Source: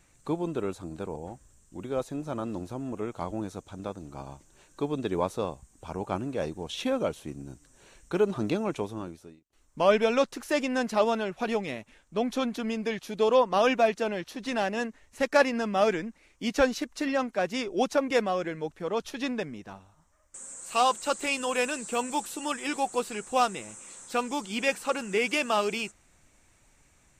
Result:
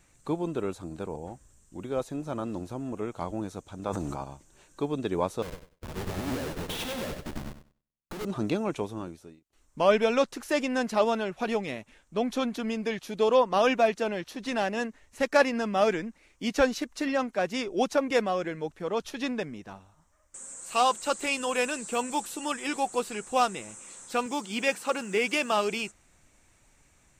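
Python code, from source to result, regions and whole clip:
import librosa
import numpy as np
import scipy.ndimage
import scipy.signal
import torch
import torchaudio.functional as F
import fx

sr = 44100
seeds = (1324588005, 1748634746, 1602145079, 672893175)

y = fx.chain(x, sr, fx.dynamic_eq(hz=950.0, q=1.1, threshold_db=-50.0, ratio=4.0, max_db=6),
    fx.sustainer(db_per_s=21.0), at=(3.75, 4.24))
y = fx.chain(y, sr, fx.schmitt(flips_db=-40.0),
    fx.echo_feedback(ms=96, feedback_pct=51, wet_db=-4),
    fx.upward_expand(threshold_db=-53.0, expansion=2.5), at=(5.42, 8.25))
y = fx.chain(y, sr, fx.highpass(hz=110.0, slope=12),
    fx.quant_companded(bits=8), at=(24.26, 25.52))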